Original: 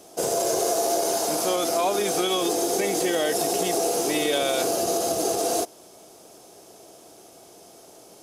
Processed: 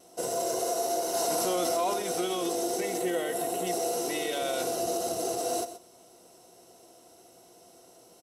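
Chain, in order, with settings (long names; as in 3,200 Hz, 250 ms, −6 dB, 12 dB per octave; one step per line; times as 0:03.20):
0:02.97–0:03.67: parametric band 5,300 Hz −10.5 dB 0.64 octaves
pitch vibrato 0.31 Hz 5.3 cents
EQ curve with evenly spaced ripples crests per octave 2, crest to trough 8 dB
single-tap delay 128 ms −13 dB
0:01.14–0:01.94: envelope flattener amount 70%
level −8 dB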